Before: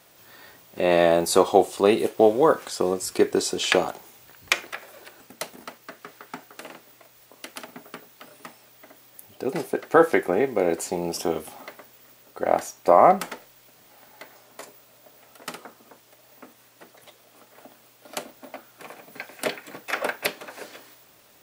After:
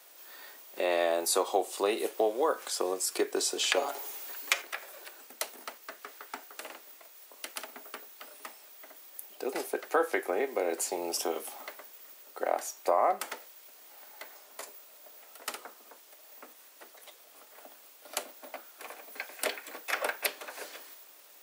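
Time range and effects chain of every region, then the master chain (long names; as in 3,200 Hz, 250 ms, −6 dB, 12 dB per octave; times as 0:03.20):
0:03.76–0:04.62: mu-law and A-law mismatch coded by mu + low shelf with overshoot 220 Hz −8 dB, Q 1.5 + comb filter 7.2 ms, depth 60%
whole clip: Bessel high-pass filter 440 Hz, order 8; high-shelf EQ 6,500 Hz +5.5 dB; downward compressor 2 to 1, threshold −25 dBFS; level −2.5 dB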